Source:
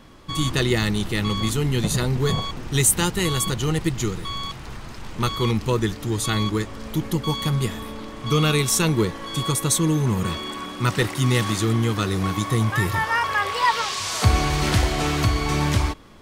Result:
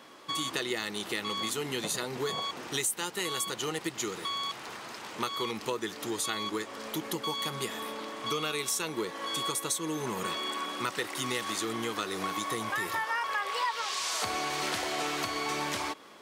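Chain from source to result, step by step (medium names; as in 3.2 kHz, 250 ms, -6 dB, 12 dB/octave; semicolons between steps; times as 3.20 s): high-pass 400 Hz 12 dB/octave; compression 4:1, threshold -30 dBFS, peak gain reduction 14 dB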